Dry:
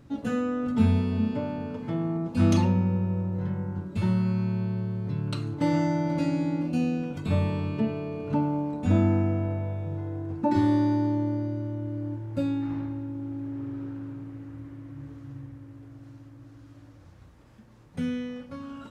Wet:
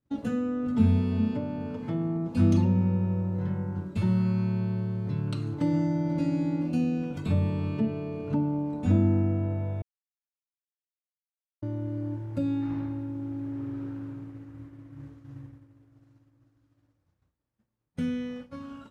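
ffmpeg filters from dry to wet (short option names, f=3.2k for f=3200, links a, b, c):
-filter_complex "[0:a]asplit=3[a][b][c];[a]atrim=end=9.82,asetpts=PTS-STARTPTS,afade=t=out:st=9.816:d=0.004:c=hsin[d];[b]atrim=start=9.82:end=11.62,asetpts=PTS-STARTPTS,volume=0[e];[c]atrim=start=11.62,asetpts=PTS-STARTPTS,afade=t=in:d=0.004:c=hsin[f];[d][e][f]concat=n=3:v=0:a=1,agate=range=-33dB:threshold=-36dB:ratio=3:detection=peak,acrossover=split=440[g][h];[h]acompressor=threshold=-41dB:ratio=4[i];[g][i]amix=inputs=2:normalize=0"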